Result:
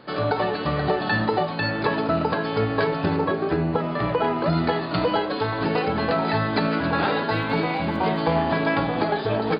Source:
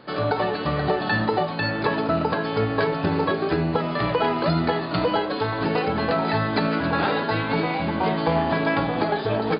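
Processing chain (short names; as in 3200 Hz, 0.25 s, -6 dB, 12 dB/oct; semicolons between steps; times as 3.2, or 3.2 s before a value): 3.16–4.53 high shelf 3300 Hz -11 dB; 7.28–8.29 crackle 38/s -42 dBFS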